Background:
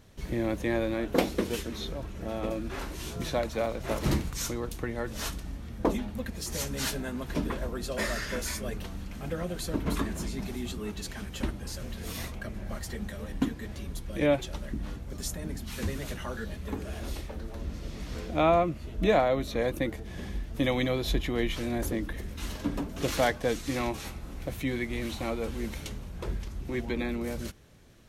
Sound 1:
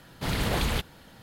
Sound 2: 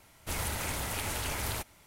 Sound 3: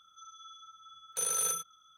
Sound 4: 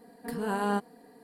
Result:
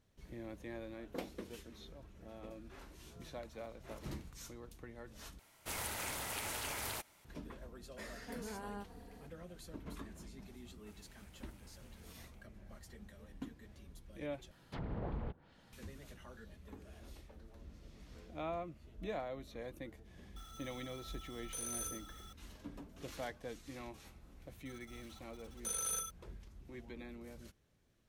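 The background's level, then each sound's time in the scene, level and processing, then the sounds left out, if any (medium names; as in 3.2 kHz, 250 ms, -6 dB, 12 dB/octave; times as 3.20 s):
background -18 dB
5.39 s: replace with 2 -5.5 dB + bass shelf 170 Hz -10.5 dB
8.04 s: add 4 -3 dB + compression, threshold -40 dBFS
10.60 s: add 2 -16 dB + compression 12:1, threshold -46 dBFS
14.51 s: replace with 1 -12.5 dB + low-pass that closes with the level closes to 850 Hz, closed at -26 dBFS
20.36 s: add 3 -13 dB + jump at every zero crossing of -39 dBFS
24.48 s: add 3 -7.5 dB + small samples zeroed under -49 dBFS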